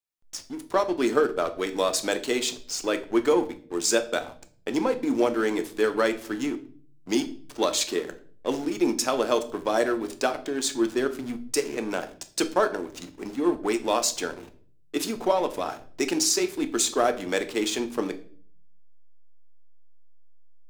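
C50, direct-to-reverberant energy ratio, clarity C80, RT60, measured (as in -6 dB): 15.0 dB, 8.0 dB, 19.5 dB, 0.50 s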